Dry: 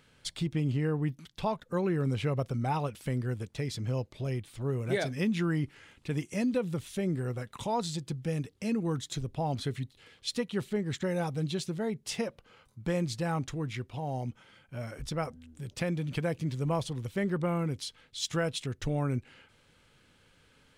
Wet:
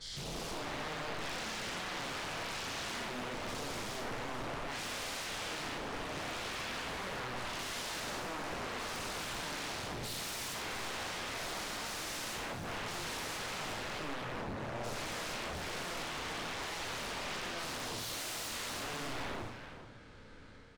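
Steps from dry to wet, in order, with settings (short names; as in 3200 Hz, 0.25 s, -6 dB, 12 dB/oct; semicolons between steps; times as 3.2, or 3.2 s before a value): spectral dilation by 0.48 s; LPF 4600 Hz; bell 2900 Hz -9 dB 0.8 oct; notches 60/120/180/240/300 Hz; in parallel at +0.5 dB: compressor, threshold -47 dBFS, peak gain reduction 25 dB; on the sum: transient shaper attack -3 dB, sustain +2 dB; AGC gain up to 4.5 dB; wavefolder -28.5 dBFS; tapped delay 47/54/55/423 ms -19/-20/-17/-12 dB; on a send at -2.5 dB: reverb RT60 0.60 s, pre-delay 25 ms; on the sum: Doppler distortion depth 0.77 ms; gain -9 dB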